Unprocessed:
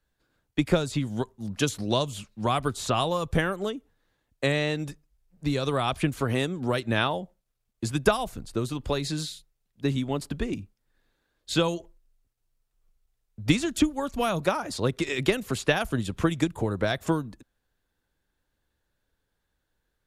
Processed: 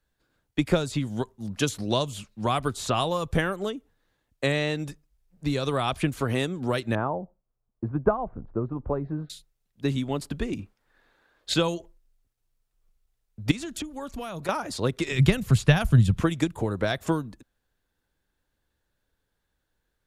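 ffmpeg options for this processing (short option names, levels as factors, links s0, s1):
-filter_complex "[0:a]asettb=1/sr,asplit=3[s0][s1][s2];[s0]atrim=end=6.954[s3];[s1]atrim=start=6.95:end=9.3,asetpts=PTS-STARTPTS,afade=t=in:d=0.004:c=qsin,afade=t=out:st=2.346:d=0.004:c=qsin,lowpass=f=1200:w=0.5412,lowpass=f=1200:w=1.3066[s4];[s2]atrim=start=9.296[s5];[s3][s4]acrossfade=d=0.004:c1=hsin:c2=qsin[s6];[s6][s5]acrossfade=d=0.004:c1=qsin:c2=hsin,asettb=1/sr,asplit=3[s7][s8][s9];[s7]atrim=end=10.594[s10];[s8]atrim=start=10.59:end=11.54,asetpts=PTS-STARTPTS,afade=t=in:d=0.004:c=qsin,afade=t=out:st=0.946:d=0.004:c=qsin,equalizer=f=1100:w=0.33:g=13[s11];[s9]atrim=start=11.536[s12];[s10][s11]acrossfade=d=0.004:c1=hsin:c2=qsin[s13];[s13][s12]acrossfade=d=0.004:c1=qsin:c2=hsin,asettb=1/sr,asplit=3[s14][s15][s16];[s14]atrim=end=13.514[s17];[s15]atrim=start=13.51:end=14.49,asetpts=PTS-STARTPTS,afade=t=in:d=0.004:c=qsin,afade=t=out:st=0.976:d=0.004:c=qsin,acompressor=threshold=0.0251:ratio=4:attack=3.2:release=140:knee=1:detection=peak[s18];[s16]atrim=start=14.486[s19];[s17][s18]acrossfade=d=0.004:c1=hsin:c2=qsin[s20];[s20][s19]acrossfade=d=0.004:c1=qsin:c2=hsin,asettb=1/sr,asplit=3[s21][s22][s23];[s21]atrim=end=15.114[s24];[s22]atrim=start=15.11:end=16.2,asetpts=PTS-STARTPTS,afade=t=in:d=0.004:c=qsin,afade=t=out:st=1.086:d=0.004:c=qsin,lowshelf=f=210:t=q:w=1.5:g=12[s25];[s23]atrim=start=16.196[s26];[s24][s25]acrossfade=d=0.004:c1=hsin:c2=qsin[s27];[s27][s26]acrossfade=d=0.004:c1=qsin:c2=hsin"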